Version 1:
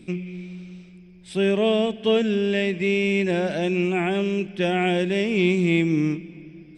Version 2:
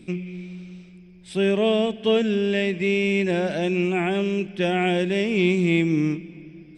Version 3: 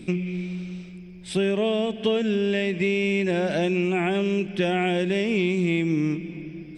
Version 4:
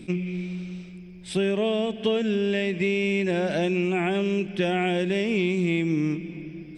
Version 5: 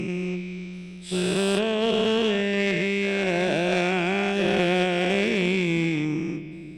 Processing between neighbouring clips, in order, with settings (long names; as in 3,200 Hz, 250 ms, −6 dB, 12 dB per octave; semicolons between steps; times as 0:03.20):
no processing that can be heard
downward compressor 5 to 1, threshold −26 dBFS, peak gain reduction 10 dB; level +5.5 dB
level that may rise only so fast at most 550 dB per second; level −1 dB
every bin's largest magnitude spread in time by 480 ms; harmonic generator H 3 −16 dB, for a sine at −8 dBFS